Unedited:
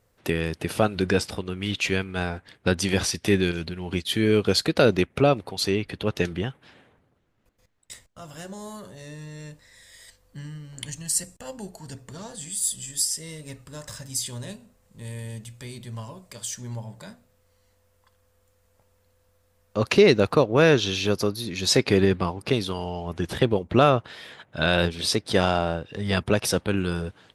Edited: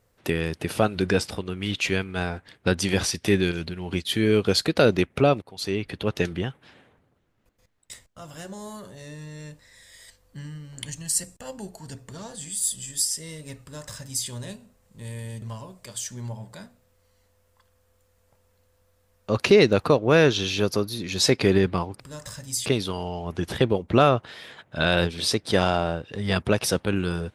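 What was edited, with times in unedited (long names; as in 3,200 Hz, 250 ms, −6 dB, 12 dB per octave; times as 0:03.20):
0:05.42–0:05.88: fade in, from −17 dB
0:13.62–0:14.28: duplicate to 0:22.47
0:15.42–0:15.89: remove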